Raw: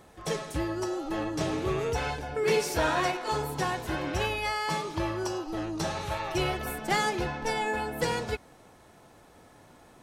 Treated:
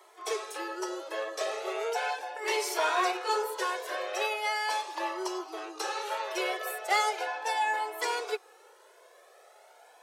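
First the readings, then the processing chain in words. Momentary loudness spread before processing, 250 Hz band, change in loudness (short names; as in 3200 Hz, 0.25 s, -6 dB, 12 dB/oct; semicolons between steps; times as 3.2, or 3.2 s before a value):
6 LU, -11.0 dB, -1.5 dB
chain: steep high-pass 370 Hz 72 dB/oct; cascading flanger rising 0.38 Hz; gain +4.5 dB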